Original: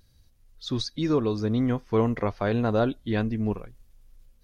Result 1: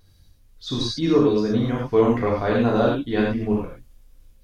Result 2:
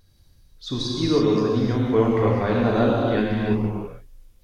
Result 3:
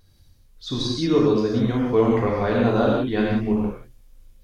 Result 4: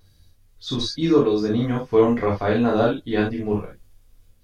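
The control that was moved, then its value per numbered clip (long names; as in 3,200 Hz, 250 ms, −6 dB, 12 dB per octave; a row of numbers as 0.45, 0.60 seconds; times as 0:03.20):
reverb whose tail is shaped and stops, gate: 130, 370, 210, 90 milliseconds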